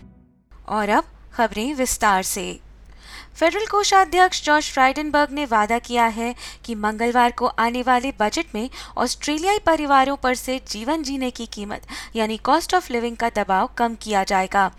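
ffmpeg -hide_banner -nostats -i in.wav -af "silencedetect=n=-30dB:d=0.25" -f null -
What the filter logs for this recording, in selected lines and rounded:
silence_start: 0.00
silence_end: 0.68 | silence_duration: 0.68
silence_start: 1.02
silence_end: 1.36 | silence_duration: 0.34
silence_start: 2.55
silence_end: 3.11 | silence_duration: 0.55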